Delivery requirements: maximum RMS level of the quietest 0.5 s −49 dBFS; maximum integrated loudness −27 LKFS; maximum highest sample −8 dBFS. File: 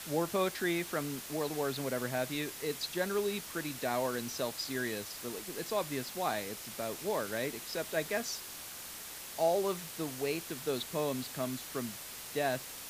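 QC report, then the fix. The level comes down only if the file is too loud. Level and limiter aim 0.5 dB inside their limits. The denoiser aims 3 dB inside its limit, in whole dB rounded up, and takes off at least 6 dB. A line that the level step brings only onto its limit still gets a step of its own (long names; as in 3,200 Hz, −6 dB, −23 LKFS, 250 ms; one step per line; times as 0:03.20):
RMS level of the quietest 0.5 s −46 dBFS: out of spec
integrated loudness −35.5 LKFS: in spec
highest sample −18.5 dBFS: in spec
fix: broadband denoise 6 dB, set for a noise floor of −46 dBFS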